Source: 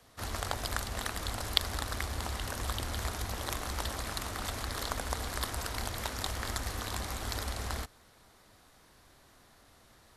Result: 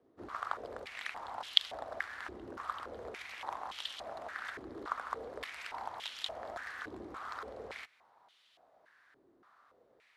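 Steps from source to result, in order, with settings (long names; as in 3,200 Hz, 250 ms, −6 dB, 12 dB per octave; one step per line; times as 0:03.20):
band-pass on a step sequencer 3.5 Hz 350–3,100 Hz
level +5.5 dB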